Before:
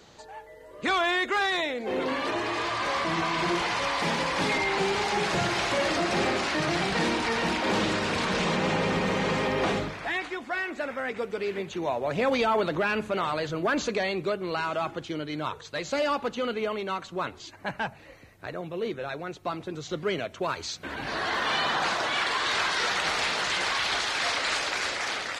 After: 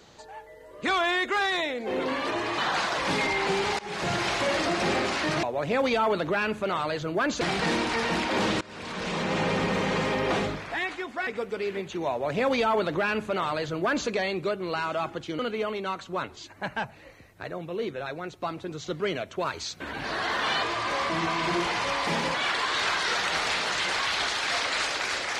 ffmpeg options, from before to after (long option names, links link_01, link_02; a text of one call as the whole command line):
ffmpeg -i in.wav -filter_complex "[0:a]asplit=11[link_01][link_02][link_03][link_04][link_05][link_06][link_07][link_08][link_09][link_10][link_11];[link_01]atrim=end=2.582[link_12];[link_02]atrim=start=21.658:end=22.062[link_13];[link_03]atrim=start=4.288:end=5.1,asetpts=PTS-STARTPTS,afade=type=out:start_time=0.808:duration=0.004:curve=hsin:silence=0.0707946[link_14];[link_04]atrim=start=5.1:end=6.742,asetpts=PTS-STARTPTS,afade=type=in:duration=0.49:curve=qsin:silence=0.0707946[link_15];[link_05]atrim=start=11.908:end=13.892[link_16];[link_06]atrim=start=6.738:end=7.94,asetpts=PTS-STARTPTS,afade=type=out:start_time=1.198:duration=0.004:curve=hsin:silence=0.0630957[link_17];[link_07]atrim=start=7.94:end=10.602,asetpts=PTS-STARTPTS,afade=type=in:duration=0.83:silence=0.0630957[link_18];[link_08]atrim=start=11.078:end=15.202[link_19];[link_09]atrim=start=16.418:end=21.662[link_20];[link_10]atrim=start=2.578:end=4.292[link_21];[link_11]atrim=start=22.058[link_22];[link_12][link_13]acrossfade=duration=0.004:curve1=hsin:curve2=hsin[link_23];[link_14][link_15]concat=n=2:v=0:a=1[link_24];[link_23][link_24]acrossfade=duration=0.004:curve1=hsin:curve2=hsin[link_25];[link_25][link_16]acrossfade=duration=0.004:curve1=hsin:curve2=hsin[link_26];[link_17][link_18]concat=n=2:v=0:a=1[link_27];[link_26][link_27]acrossfade=duration=0.004:curve1=hsin:curve2=hsin[link_28];[link_28][link_19]acrossfade=duration=0.004:curve1=hsin:curve2=hsin[link_29];[link_29][link_20]acrossfade=duration=0.004:curve1=hsin:curve2=hsin[link_30];[link_30][link_21]acrossfade=duration=0.004:curve1=hsin:curve2=hsin[link_31];[link_31][link_22]acrossfade=duration=0.004:curve1=hsin:curve2=hsin" out.wav